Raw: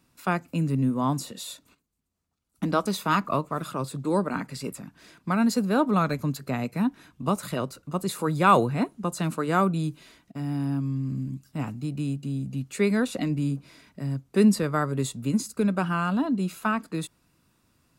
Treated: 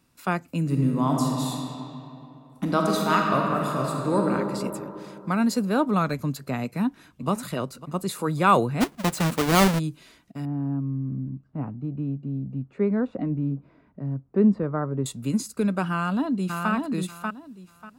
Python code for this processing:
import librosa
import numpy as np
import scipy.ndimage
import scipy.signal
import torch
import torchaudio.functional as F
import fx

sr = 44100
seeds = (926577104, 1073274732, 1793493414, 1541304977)

y = fx.reverb_throw(x, sr, start_s=0.61, length_s=3.68, rt60_s=2.9, drr_db=-0.5)
y = fx.echo_throw(y, sr, start_s=6.64, length_s=0.66, ms=550, feedback_pct=25, wet_db=-15.5)
y = fx.halfwave_hold(y, sr, at=(8.8, 9.78), fade=0.02)
y = fx.lowpass(y, sr, hz=1000.0, slope=12, at=(10.45, 15.06))
y = fx.echo_throw(y, sr, start_s=15.9, length_s=0.81, ms=590, feedback_pct=20, wet_db=-4.0)